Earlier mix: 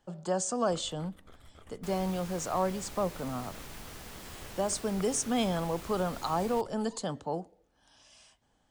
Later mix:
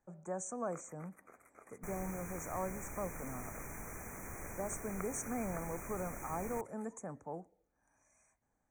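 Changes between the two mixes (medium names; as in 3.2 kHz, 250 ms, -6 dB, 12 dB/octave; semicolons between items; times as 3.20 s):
speech -10.0 dB; first sound: add high-pass 370 Hz 12 dB/octave; master: add brick-wall FIR band-stop 2.5–5.7 kHz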